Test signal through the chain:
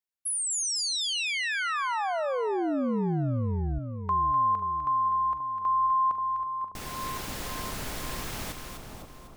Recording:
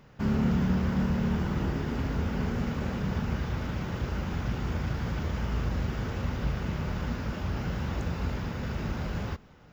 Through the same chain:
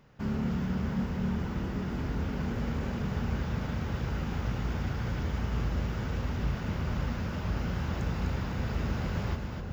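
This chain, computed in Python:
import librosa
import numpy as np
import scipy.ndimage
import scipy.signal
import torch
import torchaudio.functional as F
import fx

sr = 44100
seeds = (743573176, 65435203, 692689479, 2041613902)

y = fx.echo_split(x, sr, split_hz=1100.0, low_ms=532, high_ms=251, feedback_pct=52, wet_db=-6)
y = fx.rider(y, sr, range_db=4, speed_s=2.0)
y = y * 10.0 ** (-3.5 / 20.0)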